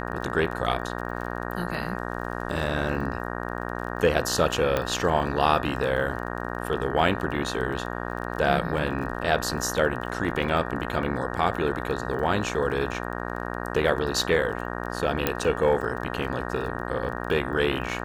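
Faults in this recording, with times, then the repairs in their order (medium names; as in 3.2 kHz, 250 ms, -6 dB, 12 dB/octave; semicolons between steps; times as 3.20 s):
buzz 60 Hz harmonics 31 -32 dBFS
crackle 23 per s -34 dBFS
4.77 s: pop -10 dBFS
15.27 s: pop -7 dBFS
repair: de-click; de-hum 60 Hz, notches 31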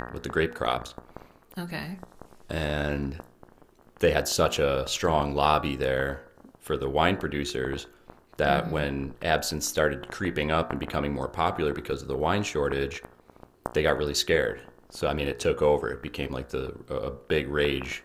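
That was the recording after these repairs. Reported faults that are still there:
15.27 s: pop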